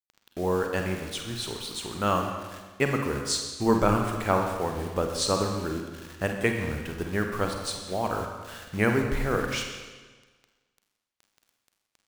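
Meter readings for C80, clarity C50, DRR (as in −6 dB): 6.0 dB, 4.5 dB, 3.0 dB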